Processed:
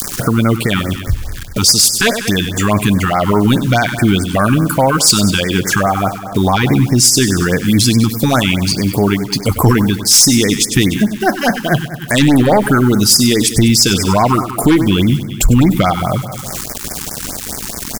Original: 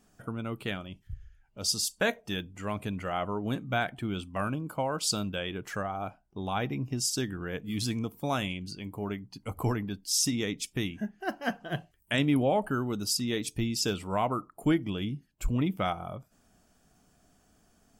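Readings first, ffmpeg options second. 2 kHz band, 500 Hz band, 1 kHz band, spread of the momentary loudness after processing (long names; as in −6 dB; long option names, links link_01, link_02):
+18.0 dB, +17.0 dB, +17.5 dB, 12 LU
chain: -filter_complex "[0:a]acrusher=bits=9:mix=0:aa=0.000001,aeval=exprs='0.211*(cos(1*acos(clip(val(0)/0.211,-1,1)))-cos(1*PI/2))+0.075*(cos(2*acos(clip(val(0)/0.211,-1,1)))-cos(2*PI/2))+0.0119*(cos(4*acos(clip(val(0)/0.211,-1,1)))-cos(4*PI/2))+0.0376*(cos(5*acos(clip(val(0)/0.211,-1,1)))-cos(5*PI/2))':channel_layout=same,adynamicequalizer=threshold=0.0112:dfrequency=540:dqfactor=1.1:tfrequency=540:tqfactor=1.1:attack=5:release=100:ratio=0.375:range=2:mode=cutabove:tftype=bell,asplit=2[link_01][link_02];[link_02]aecho=0:1:97|194|291|388|485|582:0.2|0.112|0.0626|0.035|0.0196|0.011[link_03];[link_01][link_03]amix=inputs=2:normalize=0,acompressor=mode=upward:threshold=-27dB:ratio=2.5,highshelf=frequency=4300:gain=6,asoftclip=type=hard:threshold=-15dB,alimiter=level_in=19.5dB:limit=-1dB:release=50:level=0:latency=1,afftfilt=real='re*(1-between(b*sr/1024,540*pow(3400/540,0.5+0.5*sin(2*PI*4.8*pts/sr))/1.41,540*pow(3400/540,0.5+0.5*sin(2*PI*4.8*pts/sr))*1.41))':imag='im*(1-between(b*sr/1024,540*pow(3400/540,0.5+0.5*sin(2*PI*4.8*pts/sr))/1.41,540*pow(3400/540,0.5+0.5*sin(2*PI*4.8*pts/sr))*1.41))':win_size=1024:overlap=0.75,volume=-2dB"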